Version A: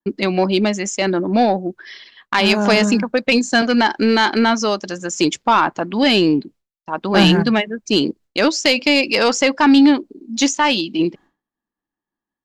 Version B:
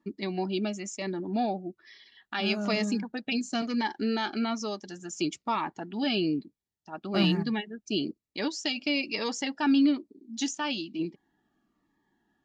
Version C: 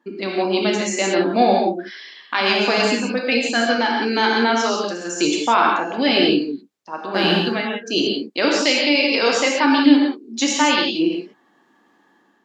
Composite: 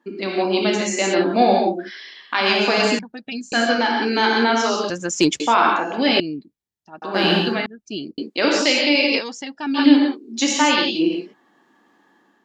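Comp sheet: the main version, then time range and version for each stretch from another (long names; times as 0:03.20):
C
0:02.99–0:03.52: punch in from B
0:04.90–0:05.40: punch in from A
0:06.20–0:07.02: punch in from B
0:07.66–0:08.18: punch in from B
0:09.20–0:09.77: punch in from B, crossfade 0.06 s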